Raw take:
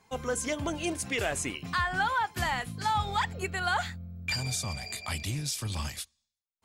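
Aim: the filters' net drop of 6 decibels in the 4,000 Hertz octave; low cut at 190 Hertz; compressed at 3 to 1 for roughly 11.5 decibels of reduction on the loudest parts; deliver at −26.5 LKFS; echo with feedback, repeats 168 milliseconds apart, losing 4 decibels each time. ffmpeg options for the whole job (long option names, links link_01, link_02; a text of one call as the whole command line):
ffmpeg -i in.wav -af "highpass=190,equalizer=frequency=4000:width_type=o:gain=-8,acompressor=threshold=-41dB:ratio=3,aecho=1:1:168|336|504|672|840|1008|1176|1344|1512:0.631|0.398|0.25|0.158|0.0994|0.0626|0.0394|0.0249|0.0157,volume=13dB" out.wav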